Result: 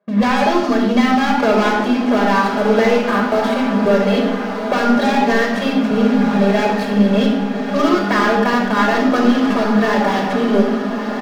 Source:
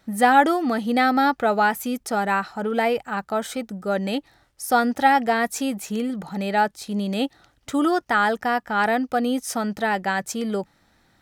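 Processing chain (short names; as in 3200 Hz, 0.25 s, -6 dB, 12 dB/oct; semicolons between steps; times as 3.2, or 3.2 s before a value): CVSD 32 kbps; HPF 200 Hz 24 dB/oct; low-pass opened by the level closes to 910 Hz, open at -17.5 dBFS; comb 4.9 ms, depth 87%; sample leveller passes 3; compressor 4:1, threshold -17 dBFS, peak gain reduction 10 dB; on a send: diffused feedback echo 1.294 s, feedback 57%, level -8 dB; on the sum: shoebox room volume 3800 m³, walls furnished, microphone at 5.5 m; gain -1.5 dB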